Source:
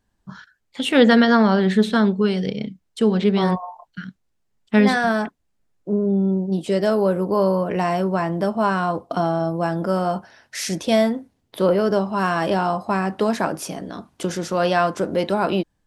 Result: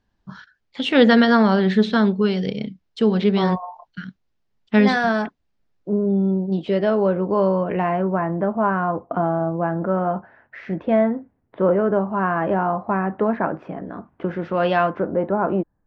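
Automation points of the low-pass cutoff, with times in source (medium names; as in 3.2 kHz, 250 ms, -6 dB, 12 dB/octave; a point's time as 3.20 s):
low-pass 24 dB/octave
6.28 s 5.5 kHz
6.81 s 3.3 kHz
7.57 s 3.3 kHz
8.15 s 1.9 kHz
14.24 s 1.9 kHz
14.75 s 3.5 kHz
15.13 s 1.5 kHz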